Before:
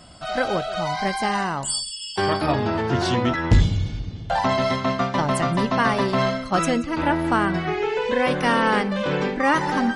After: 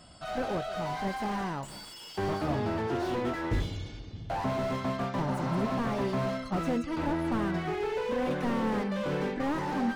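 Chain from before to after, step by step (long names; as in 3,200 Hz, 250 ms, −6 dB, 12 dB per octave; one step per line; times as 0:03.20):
0:02.87–0:04.13: low shelf with overshoot 250 Hz −7 dB, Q 1.5
0:05.30–0:05.70: healed spectral selection 560–5,700 Hz both
slew-rate limiting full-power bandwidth 56 Hz
level −7 dB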